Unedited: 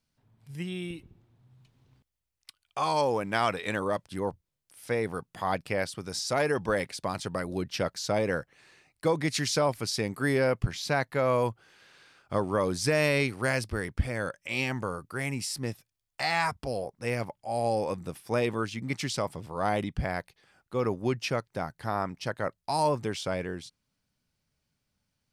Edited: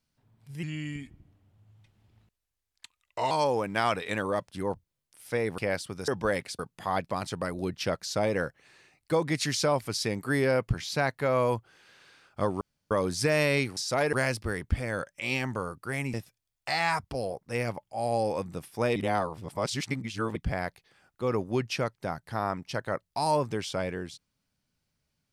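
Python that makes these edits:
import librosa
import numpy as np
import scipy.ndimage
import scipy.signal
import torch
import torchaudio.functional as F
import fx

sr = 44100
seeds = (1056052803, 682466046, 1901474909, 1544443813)

y = fx.edit(x, sr, fx.speed_span(start_s=0.63, length_s=2.25, speed=0.84),
    fx.move(start_s=5.15, length_s=0.51, to_s=7.03),
    fx.move(start_s=6.16, length_s=0.36, to_s=13.4),
    fx.insert_room_tone(at_s=12.54, length_s=0.3),
    fx.cut(start_s=15.41, length_s=0.25),
    fx.reverse_span(start_s=18.48, length_s=1.4), tone=tone)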